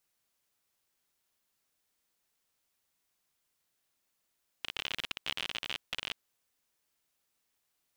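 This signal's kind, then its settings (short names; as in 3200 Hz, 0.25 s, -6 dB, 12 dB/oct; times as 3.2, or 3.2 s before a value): random clicks 52/s -19 dBFS 1.50 s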